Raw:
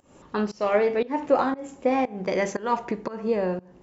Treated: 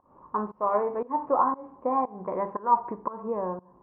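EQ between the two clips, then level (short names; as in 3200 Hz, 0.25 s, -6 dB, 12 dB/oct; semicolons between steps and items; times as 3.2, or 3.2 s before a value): ladder low-pass 1100 Hz, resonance 80%; +4.5 dB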